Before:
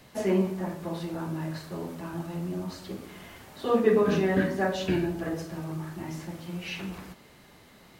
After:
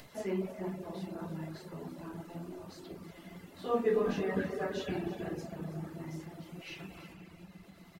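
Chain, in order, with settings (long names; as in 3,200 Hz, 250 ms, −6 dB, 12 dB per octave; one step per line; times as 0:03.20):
rectangular room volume 210 cubic metres, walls hard, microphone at 0.37 metres
upward compression, threshold −37 dBFS
tuned comb filter 680 Hz, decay 0.17 s, harmonics all, mix 70%
on a send: single-tap delay 324 ms −13 dB
on the sum: reverb reduction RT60 0.7 s
0:03.56–0:04.23: double-tracking delay 21 ms −6 dB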